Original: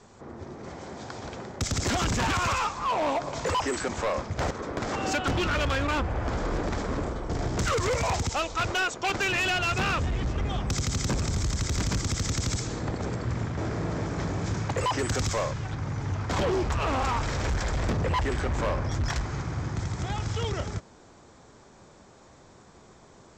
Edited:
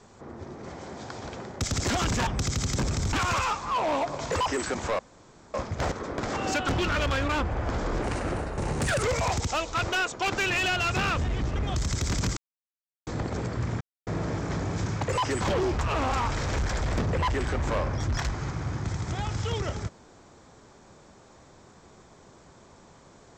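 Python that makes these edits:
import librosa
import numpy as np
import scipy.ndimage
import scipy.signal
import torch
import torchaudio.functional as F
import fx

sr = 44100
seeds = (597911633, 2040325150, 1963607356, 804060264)

y = fx.edit(x, sr, fx.insert_room_tone(at_s=4.13, length_s=0.55),
    fx.speed_span(start_s=6.61, length_s=1.24, speed=1.23),
    fx.move(start_s=10.58, length_s=0.86, to_s=2.27),
    fx.silence(start_s=12.05, length_s=0.7),
    fx.silence(start_s=13.49, length_s=0.26),
    fx.cut(start_s=15.09, length_s=1.23), tone=tone)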